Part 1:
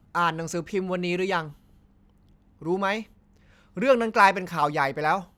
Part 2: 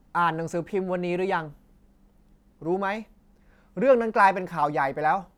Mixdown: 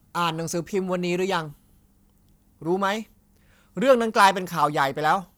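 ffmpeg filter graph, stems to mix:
-filter_complex "[0:a]volume=-2dB[a];[1:a]afwtdn=0.02,equalizer=f=1.2k:t=o:w=0.4:g=8.5,aexciter=amount=9.6:drive=4.1:freq=3k,volume=-5dB[b];[a][b]amix=inputs=2:normalize=0,highshelf=f=5.2k:g=11"

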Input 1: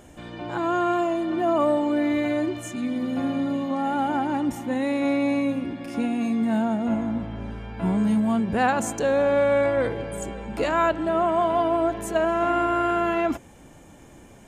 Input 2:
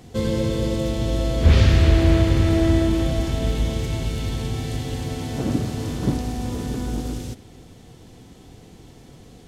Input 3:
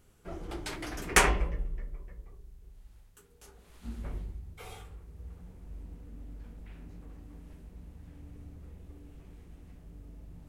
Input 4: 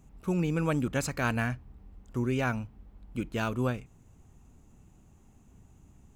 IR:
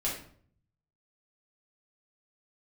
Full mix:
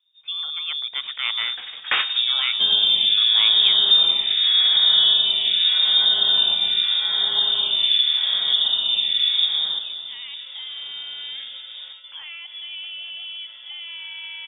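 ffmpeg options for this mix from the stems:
-filter_complex "[0:a]highpass=f=140:w=0.5412,highpass=f=140:w=1.3066,alimiter=limit=-20dB:level=0:latency=1:release=28,adelay=1550,volume=-15.5dB[a];[1:a]acompressor=threshold=-19dB:ratio=12,asplit=2[b][c];[c]afreqshift=0.83[d];[b][d]amix=inputs=2:normalize=1,adelay=2450,volume=-1.5dB,asplit=2[e][f];[f]volume=-9.5dB[g];[2:a]adelay=750,volume=-4dB,asplit=2[h][i];[i]volume=-16dB[j];[3:a]volume=-1.5dB,asplit=2[k][l];[l]apad=whole_len=495587[m];[h][m]sidechaingate=range=-33dB:threshold=-51dB:ratio=16:detection=peak[n];[4:a]atrim=start_sample=2205[o];[g][j]amix=inputs=2:normalize=0[p];[p][o]afir=irnorm=-1:irlink=0[q];[a][e][n][k][q]amix=inputs=5:normalize=0,agate=range=-12dB:threshold=-51dB:ratio=16:detection=peak,dynaudnorm=f=340:g=7:m=7dB,lowpass=f=3.1k:t=q:w=0.5098,lowpass=f=3.1k:t=q:w=0.6013,lowpass=f=3.1k:t=q:w=0.9,lowpass=f=3.1k:t=q:w=2.563,afreqshift=-3700"

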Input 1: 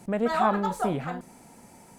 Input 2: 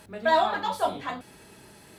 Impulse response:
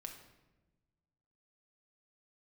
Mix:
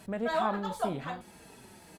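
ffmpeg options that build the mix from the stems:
-filter_complex "[0:a]volume=-7dB,asplit=2[a][b];[1:a]asplit=2[c][d];[d]adelay=4.7,afreqshift=-1.9[e];[c][e]amix=inputs=2:normalize=1,volume=-1,volume=-0.5dB[f];[b]apad=whole_len=87707[g];[f][g]sidechaincompress=threshold=-34dB:ratio=8:attack=16:release=798[h];[a][h]amix=inputs=2:normalize=0"

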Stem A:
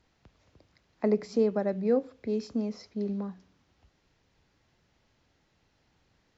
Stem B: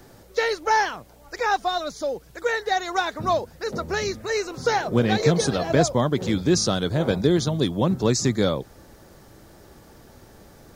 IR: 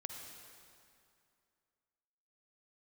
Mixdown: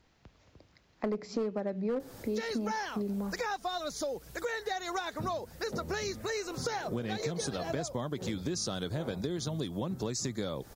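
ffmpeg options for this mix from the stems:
-filter_complex "[0:a]volume=20dB,asoftclip=hard,volume=-20dB,volume=2.5dB[a];[1:a]highshelf=f=6.1k:g=6,acompressor=threshold=-35dB:ratio=2,adelay=2000,volume=0.5dB[b];[a][b]amix=inputs=2:normalize=0,acompressor=threshold=-31dB:ratio=4"

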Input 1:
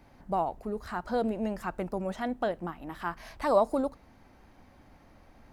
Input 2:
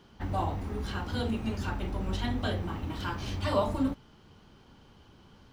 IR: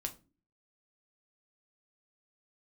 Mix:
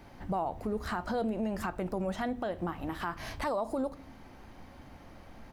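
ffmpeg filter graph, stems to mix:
-filter_complex "[0:a]volume=2.5dB,asplit=2[a][b];[b]volume=-7dB[c];[1:a]acompressor=threshold=-35dB:ratio=6,adelay=4.4,volume=-7dB[d];[2:a]atrim=start_sample=2205[e];[c][e]afir=irnorm=-1:irlink=0[f];[a][d][f]amix=inputs=3:normalize=0,alimiter=limit=-24dB:level=0:latency=1:release=146"

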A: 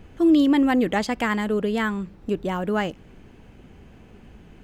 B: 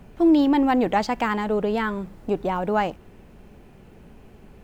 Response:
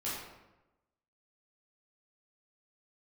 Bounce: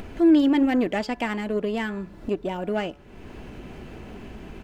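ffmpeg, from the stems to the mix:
-filter_complex "[0:a]equalizer=f=80:t=o:w=2.2:g=-4,bandreject=f=143.5:t=h:w=4,bandreject=f=287:t=h:w=4,bandreject=f=430.5:t=h:w=4,bandreject=f=574:t=h:w=4,bandreject=f=717.5:t=h:w=4,bandreject=f=861:t=h:w=4,bandreject=f=1.0045k:t=h:w=4,bandreject=f=1.148k:t=h:w=4,bandreject=f=1.2915k:t=h:w=4,bandreject=f=1.435k:t=h:w=4,bandreject=f=1.5785k:t=h:w=4,bandreject=f=1.722k:t=h:w=4,aeval=exprs='0.316*(cos(1*acos(clip(val(0)/0.316,-1,1)))-cos(1*PI/2))+0.0158*(cos(7*acos(clip(val(0)/0.316,-1,1)))-cos(7*PI/2))':c=same,volume=-3.5dB[a];[1:a]highpass=50,equalizer=f=4.3k:w=0.56:g=5,aecho=1:1:3:0.65,adelay=0.5,volume=-11.5dB[b];[a][b]amix=inputs=2:normalize=0,highshelf=f=6.6k:g=-6.5,acompressor=mode=upward:threshold=-25dB:ratio=2.5"

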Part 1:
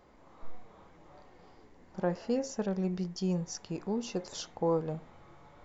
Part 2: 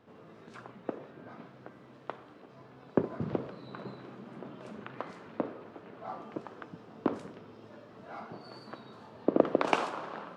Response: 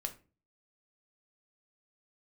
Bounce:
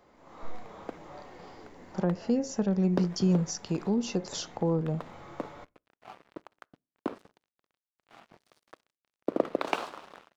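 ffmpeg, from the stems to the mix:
-filter_complex "[0:a]acrossover=split=290[a][b];[b]acompressor=threshold=-44dB:ratio=4[c];[a][c]amix=inputs=2:normalize=0,volume=-0.5dB,asplit=2[d][e];[e]volume=-16.5dB[f];[1:a]equalizer=f=3.9k:t=o:w=0.51:g=5,aeval=exprs='sgn(val(0))*max(abs(val(0))-0.00794,0)':c=same,volume=-12dB,asplit=2[g][h];[h]volume=-21dB[i];[2:a]atrim=start_sample=2205[j];[f][i]amix=inputs=2:normalize=0[k];[k][j]afir=irnorm=-1:irlink=0[l];[d][g][l]amix=inputs=3:normalize=0,lowshelf=f=93:g=-10,dynaudnorm=f=120:g=5:m=9.5dB"

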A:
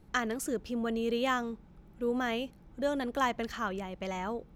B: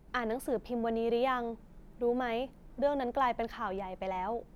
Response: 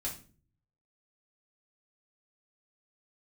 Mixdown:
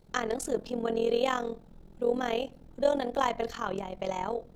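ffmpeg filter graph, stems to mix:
-filter_complex "[0:a]equalizer=f=125:t=o:w=1:g=5,equalizer=f=250:t=o:w=1:g=-6,equalizer=f=500:t=o:w=1:g=8,equalizer=f=2k:t=o:w=1:g=-4,equalizer=f=4k:t=o:w=1:g=10,equalizer=f=8k:t=o:w=1:g=6,volume=-2.5dB[a];[1:a]volume=-2.5dB,asplit=2[b][c];[c]volume=-5dB[d];[2:a]atrim=start_sample=2205[e];[d][e]afir=irnorm=-1:irlink=0[f];[a][b][f]amix=inputs=3:normalize=0,tremolo=f=42:d=0.824"

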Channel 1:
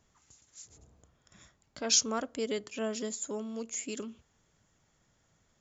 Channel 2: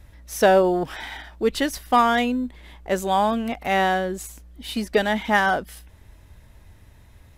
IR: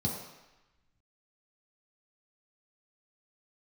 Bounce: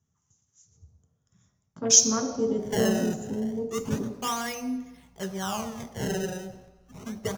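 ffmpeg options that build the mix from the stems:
-filter_complex "[0:a]afwtdn=0.0126,volume=1.5dB,asplit=2[a][b];[b]volume=-6dB[c];[1:a]lowpass=f=6.9k:w=0.5412,lowpass=f=6.9k:w=1.3066,adynamicequalizer=threshold=0.00794:dfrequency=2300:dqfactor=2.5:tfrequency=2300:tqfactor=2.5:attack=5:release=100:ratio=0.375:range=3.5:mode=boostabove:tftype=bell,acrusher=samples=22:mix=1:aa=0.000001:lfo=1:lforange=35.2:lforate=0.31,adelay=2300,volume=-13dB,asplit=2[d][e];[e]volume=-11dB[f];[2:a]atrim=start_sample=2205[g];[c][f]amix=inputs=2:normalize=0[h];[h][g]afir=irnorm=-1:irlink=0[i];[a][d][i]amix=inputs=3:normalize=0,equalizer=f=6.1k:t=o:w=0.35:g=9"

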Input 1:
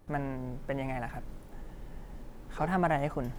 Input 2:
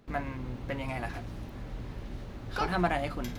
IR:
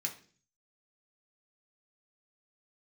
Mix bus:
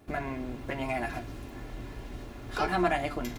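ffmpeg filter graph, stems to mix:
-filter_complex "[0:a]highpass=90,acompressor=threshold=-34dB:ratio=6,volume=2.5dB[a];[1:a]volume=-1,adelay=4,volume=-2dB,asplit=2[b][c];[c]volume=-6.5dB[d];[2:a]atrim=start_sample=2205[e];[d][e]afir=irnorm=-1:irlink=0[f];[a][b][f]amix=inputs=3:normalize=0,aecho=1:1:2.9:0.45"

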